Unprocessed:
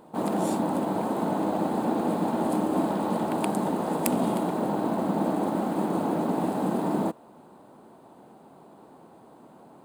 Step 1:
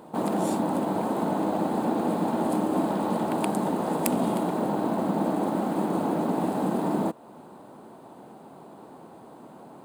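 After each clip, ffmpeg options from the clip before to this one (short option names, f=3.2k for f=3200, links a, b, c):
-filter_complex "[0:a]highpass=60,asplit=2[a][b];[b]acompressor=threshold=-35dB:ratio=6,volume=1dB[c];[a][c]amix=inputs=2:normalize=0,volume=-2dB"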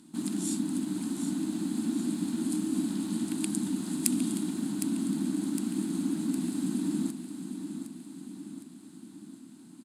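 -filter_complex "[0:a]firequalizer=gain_entry='entry(140,0);entry(280,10);entry(480,-24);entry(1500,-2);entry(4200,11);entry(7500,15);entry(11000,13);entry(15000,-7)':delay=0.05:min_phase=1,asplit=2[a][b];[b]aecho=0:1:760|1520|2280|3040|3800|4560:0.355|0.195|0.107|0.059|0.0325|0.0179[c];[a][c]amix=inputs=2:normalize=0,volume=-9dB"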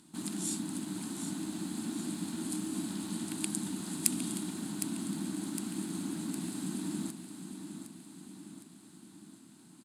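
-af "equalizer=f=260:w=1.9:g=-9.5"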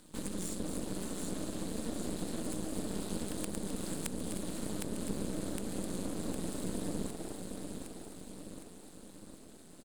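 -filter_complex "[0:a]acrossover=split=230[a][b];[b]acompressor=threshold=-41dB:ratio=5[c];[a][c]amix=inputs=2:normalize=0,asplit=4[d][e][f][g];[e]adelay=259,afreqshift=130,volume=-9.5dB[h];[f]adelay=518,afreqshift=260,volume=-19.7dB[i];[g]adelay=777,afreqshift=390,volume=-29.8dB[j];[d][h][i][j]amix=inputs=4:normalize=0,aeval=exprs='max(val(0),0)':c=same,volume=5dB"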